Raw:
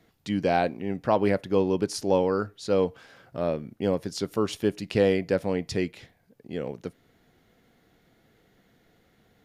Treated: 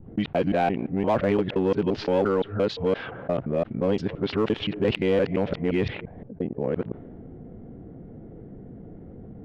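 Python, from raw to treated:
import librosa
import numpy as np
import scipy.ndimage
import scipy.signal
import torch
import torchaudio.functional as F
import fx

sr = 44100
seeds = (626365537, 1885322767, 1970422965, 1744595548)

p1 = fx.local_reverse(x, sr, ms=173.0)
p2 = fx.env_lowpass(p1, sr, base_hz=370.0, full_db=-20.5)
p3 = scipy.signal.sosfilt(scipy.signal.cheby1(3, 1.0, 3200.0, 'lowpass', fs=sr, output='sos'), p2)
p4 = np.clip(p3, -10.0 ** (-23.0 / 20.0), 10.0 ** (-23.0 / 20.0))
p5 = p3 + (p4 * 10.0 ** (-3.5 / 20.0))
p6 = fx.env_flatten(p5, sr, amount_pct=50)
y = p6 * 10.0 ** (-3.5 / 20.0)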